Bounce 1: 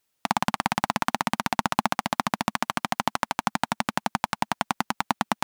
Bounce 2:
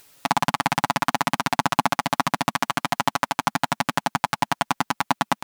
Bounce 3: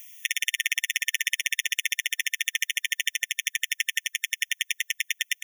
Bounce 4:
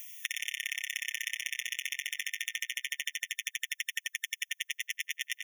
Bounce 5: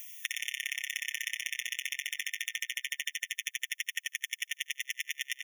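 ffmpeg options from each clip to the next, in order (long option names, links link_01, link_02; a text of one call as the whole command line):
ffmpeg -i in.wav -af "aecho=1:1:7.1:0.9,acompressor=mode=upward:threshold=-39dB:ratio=2.5,volume=1dB" out.wav
ffmpeg -i in.wav -af "highshelf=frequency=12000:gain=9,afftfilt=real='re*eq(mod(floor(b*sr/1024/1800),2),1)':imag='im*eq(mod(floor(b*sr/1024/1800),2),1)':win_size=1024:overlap=0.75,volume=4.5dB" out.wav
ffmpeg -i in.wav -filter_complex "[0:a]asplit=2[link_01][link_02];[link_02]adelay=89,lowpass=frequency=2500:poles=1,volume=-3.5dB,asplit=2[link_03][link_04];[link_04]adelay=89,lowpass=frequency=2500:poles=1,volume=0.24,asplit=2[link_05][link_06];[link_06]adelay=89,lowpass=frequency=2500:poles=1,volume=0.24[link_07];[link_01][link_03][link_05][link_07]amix=inputs=4:normalize=0,acompressor=threshold=-35dB:ratio=2.5" out.wav
ffmpeg -i in.wav -af "aecho=1:1:74|148:0.0891|0.0276" out.wav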